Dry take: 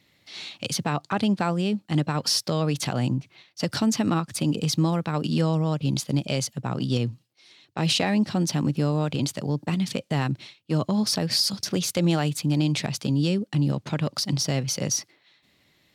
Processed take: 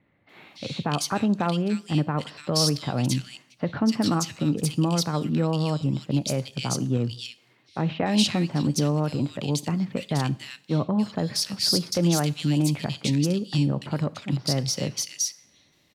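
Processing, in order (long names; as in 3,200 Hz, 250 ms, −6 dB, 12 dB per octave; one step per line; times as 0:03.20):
multiband delay without the direct sound lows, highs 290 ms, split 2,100 Hz
coupled-rooms reverb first 0.52 s, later 1.8 s, from −20 dB, DRR 16 dB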